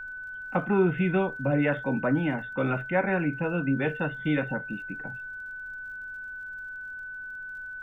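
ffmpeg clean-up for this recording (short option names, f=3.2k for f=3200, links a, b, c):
-af "adeclick=t=4,bandreject=f=1.5k:w=30,agate=range=-21dB:threshold=-31dB"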